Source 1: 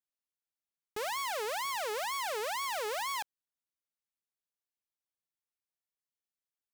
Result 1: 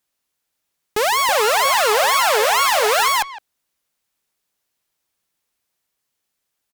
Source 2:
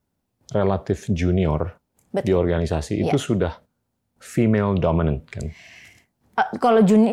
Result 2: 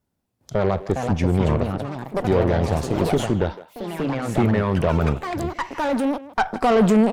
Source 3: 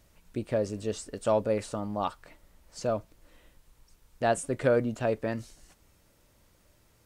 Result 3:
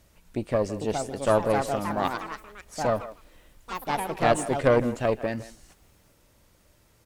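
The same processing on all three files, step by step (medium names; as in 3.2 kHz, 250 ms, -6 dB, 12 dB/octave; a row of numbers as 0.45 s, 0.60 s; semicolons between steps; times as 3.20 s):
Chebyshev shaper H 4 -18 dB, 8 -26 dB, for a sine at -6.5 dBFS; ever faster or slower copies 524 ms, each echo +4 st, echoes 3, each echo -6 dB; speakerphone echo 160 ms, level -15 dB; peak normalisation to -6 dBFS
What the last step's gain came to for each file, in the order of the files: +17.5 dB, -1.5 dB, +2.5 dB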